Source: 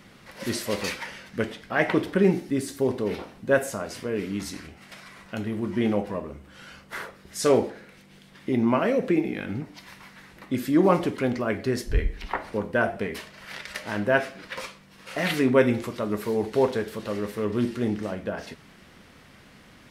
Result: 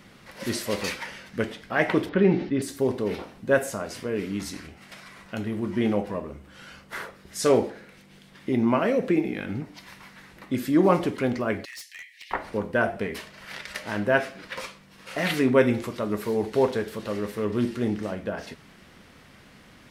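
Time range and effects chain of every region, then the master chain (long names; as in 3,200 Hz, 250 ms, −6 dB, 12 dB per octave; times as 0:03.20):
0:02.09–0:02.62: low-pass filter 4,100 Hz 24 dB per octave + level that may fall only so fast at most 100 dB per second
0:11.65–0:12.31: Butterworth high-pass 1,800 Hz 96 dB per octave + hard clipping −36.5 dBFS
whole clip: no processing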